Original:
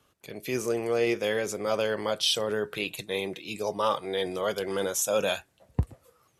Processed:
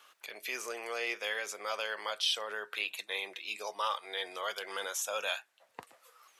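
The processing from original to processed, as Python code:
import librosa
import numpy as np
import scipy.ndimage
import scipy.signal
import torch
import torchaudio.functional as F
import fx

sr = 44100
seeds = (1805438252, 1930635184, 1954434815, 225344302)

y = scipy.signal.sosfilt(scipy.signal.butter(2, 1100.0, 'highpass', fs=sr, output='sos'), x)
y = fx.peak_eq(y, sr, hz=11000.0, db=-7.0, octaves=2.0)
y = fx.band_squash(y, sr, depth_pct=40)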